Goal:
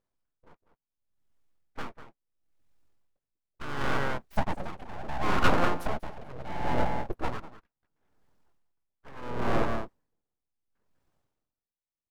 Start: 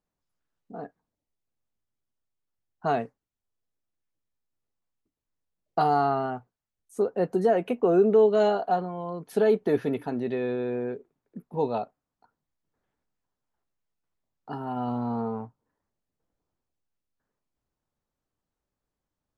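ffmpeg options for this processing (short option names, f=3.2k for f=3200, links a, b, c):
-filter_complex "[0:a]atempo=1.6,acompressor=threshold=-23dB:ratio=6,highshelf=f=4.1k:g=-6.5,asplit=2[a][b];[b]aecho=0:1:196:0.355[c];[a][c]amix=inputs=2:normalize=0,asoftclip=type=tanh:threshold=-23.5dB,asplit=4[d][e][f][g];[e]asetrate=22050,aresample=44100,atempo=2,volume=-11dB[h];[f]asetrate=29433,aresample=44100,atempo=1.49831,volume=-11dB[i];[g]asetrate=37084,aresample=44100,atempo=1.18921,volume=-11dB[j];[d][h][i][j]amix=inputs=4:normalize=0,aeval=exprs='abs(val(0))':c=same,dynaudnorm=f=250:g=11:m=10.5dB,aeval=exprs='val(0)*pow(10,-22*(0.5-0.5*cos(2*PI*0.72*n/s))/20)':c=same,volume=2dB"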